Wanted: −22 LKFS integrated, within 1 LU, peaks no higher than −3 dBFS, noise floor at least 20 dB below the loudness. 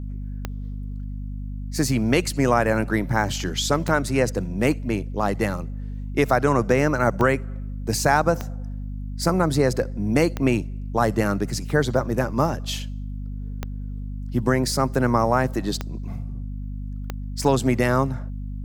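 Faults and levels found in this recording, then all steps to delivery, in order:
number of clicks 8; mains hum 50 Hz; hum harmonics up to 250 Hz; level of the hum −28 dBFS; integrated loudness −23.0 LKFS; sample peak −4.5 dBFS; target loudness −22.0 LKFS
→ click removal
hum removal 50 Hz, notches 5
level +1 dB

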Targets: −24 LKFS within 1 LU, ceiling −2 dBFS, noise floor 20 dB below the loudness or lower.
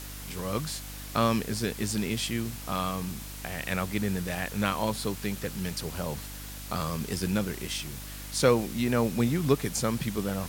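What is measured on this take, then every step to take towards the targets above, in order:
mains hum 50 Hz; hum harmonics up to 300 Hz; level of the hum −40 dBFS; background noise floor −41 dBFS; target noise floor −50 dBFS; integrated loudness −30.0 LKFS; sample peak −10.0 dBFS; target loudness −24.0 LKFS
→ hum removal 50 Hz, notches 6
broadband denoise 9 dB, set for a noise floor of −41 dBFS
level +6 dB

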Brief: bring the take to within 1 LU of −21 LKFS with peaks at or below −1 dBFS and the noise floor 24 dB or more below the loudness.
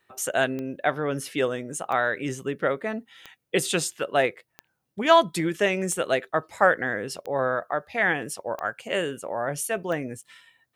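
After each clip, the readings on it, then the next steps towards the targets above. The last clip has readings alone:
number of clicks 8; integrated loudness −26.0 LKFS; sample peak −3.5 dBFS; target loudness −21.0 LKFS
→ click removal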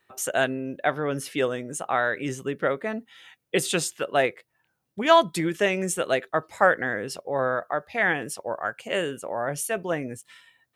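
number of clicks 0; integrated loudness −26.0 LKFS; sample peak −3.5 dBFS; target loudness −21.0 LKFS
→ level +5 dB
brickwall limiter −1 dBFS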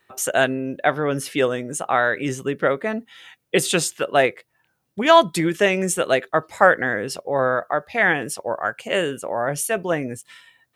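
integrated loudness −21.0 LKFS; sample peak −1.0 dBFS; background noise floor −71 dBFS

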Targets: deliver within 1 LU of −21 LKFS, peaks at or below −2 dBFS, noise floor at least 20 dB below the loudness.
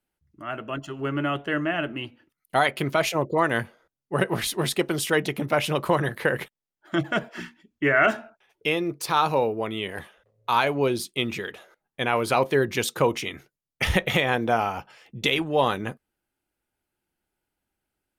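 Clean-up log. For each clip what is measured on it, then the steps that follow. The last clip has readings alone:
integrated loudness −25.0 LKFS; sample peak −6.5 dBFS; target loudness −21.0 LKFS
→ level +4 dB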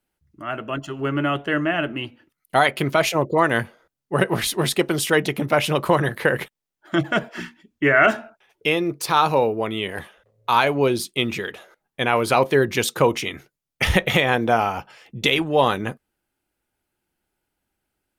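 integrated loudness −21.0 LKFS; sample peak −2.5 dBFS; background noise floor −83 dBFS

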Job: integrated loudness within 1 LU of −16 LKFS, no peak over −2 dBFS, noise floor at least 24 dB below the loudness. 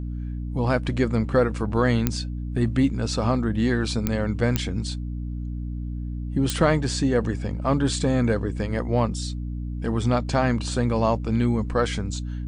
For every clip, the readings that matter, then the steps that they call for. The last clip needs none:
number of clicks 4; mains hum 60 Hz; hum harmonics up to 300 Hz; level of the hum −27 dBFS; integrated loudness −24.5 LKFS; sample peak −6.5 dBFS; target loudness −16.0 LKFS
→ click removal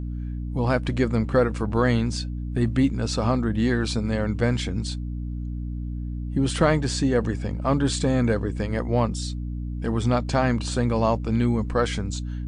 number of clicks 0; mains hum 60 Hz; hum harmonics up to 300 Hz; level of the hum −27 dBFS
→ hum removal 60 Hz, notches 5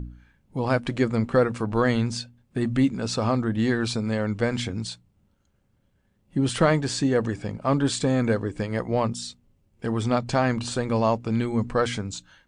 mains hum none found; integrated loudness −25.0 LKFS; sample peak −8.0 dBFS; target loudness −16.0 LKFS
→ level +9 dB
brickwall limiter −2 dBFS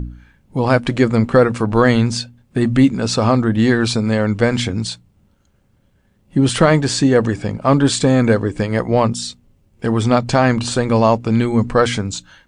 integrated loudness −16.5 LKFS; sample peak −2.0 dBFS; background noise floor −58 dBFS

